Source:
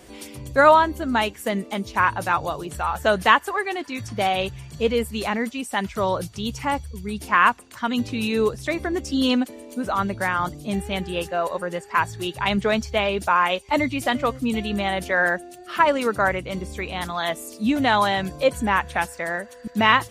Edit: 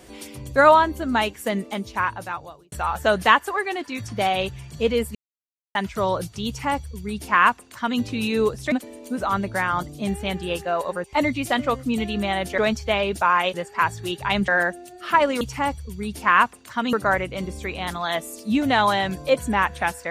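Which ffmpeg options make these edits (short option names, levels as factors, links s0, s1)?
-filter_complex "[0:a]asplit=11[s0][s1][s2][s3][s4][s5][s6][s7][s8][s9][s10];[s0]atrim=end=2.72,asetpts=PTS-STARTPTS,afade=t=out:st=1.62:d=1.1[s11];[s1]atrim=start=2.72:end=5.15,asetpts=PTS-STARTPTS,afade=t=in:d=0.004:c=hsin,afade=t=out:st=2.426:d=0.004:c=hsin[s12];[s2]atrim=start=5.15:end=5.75,asetpts=PTS-STARTPTS,volume=0[s13];[s3]atrim=start=5.75:end=8.722,asetpts=PTS-STARTPTS,afade=t=in:d=0.004:c=hsin[s14];[s4]atrim=start=9.378:end=11.702[s15];[s5]atrim=start=13.598:end=15.142[s16];[s6]atrim=start=12.638:end=13.602[s17];[s7]atrim=start=11.698:end=12.642[s18];[s8]atrim=start=15.138:end=16.072[s19];[s9]atrim=start=6.468:end=7.992[s20];[s10]atrim=start=16.068[s21];[s11][s12][s13][s14]concat=n=4:v=0:a=1[s22];[s22][s15]acrossfade=d=0.004:c1=hsin:c2=hsin[s23];[s23][s16]acrossfade=d=0.004:c1=hsin:c2=hsin[s24];[s24][s17]acrossfade=d=0.004:c1=hsin:c2=hsin[s25];[s25][s18]acrossfade=d=0.004:c1=hsin:c2=hsin[s26];[s26][s19]acrossfade=d=0.004:c1=hsin:c2=hsin[s27];[s27][s20]acrossfade=d=0.004:c1=hsin:c2=hsin[s28];[s28][s21]acrossfade=d=0.004:c1=hsin:c2=hsin"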